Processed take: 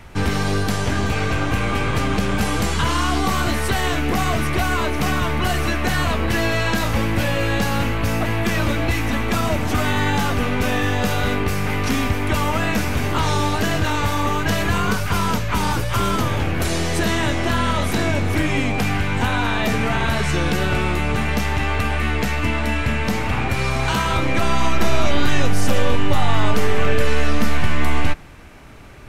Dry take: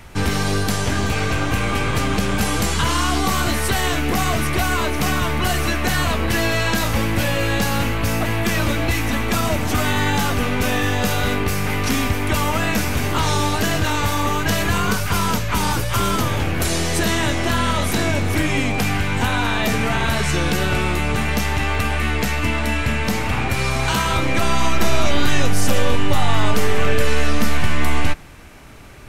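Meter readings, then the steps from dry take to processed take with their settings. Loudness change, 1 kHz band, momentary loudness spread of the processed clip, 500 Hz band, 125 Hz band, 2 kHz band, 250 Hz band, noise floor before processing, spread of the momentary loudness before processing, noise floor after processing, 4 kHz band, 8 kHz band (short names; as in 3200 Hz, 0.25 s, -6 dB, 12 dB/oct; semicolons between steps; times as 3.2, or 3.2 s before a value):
-0.5 dB, -0.5 dB, 2 LU, 0.0 dB, 0.0 dB, -1.0 dB, 0.0 dB, -22 dBFS, 2 LU, -22 dBFS, -2.5 dB, -4.5 dB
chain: high shelf 4700 Hz -6.5 dB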